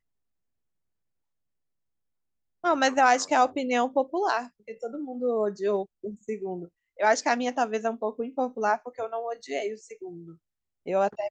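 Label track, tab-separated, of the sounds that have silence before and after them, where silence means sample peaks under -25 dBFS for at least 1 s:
2.640000	9.670000	sound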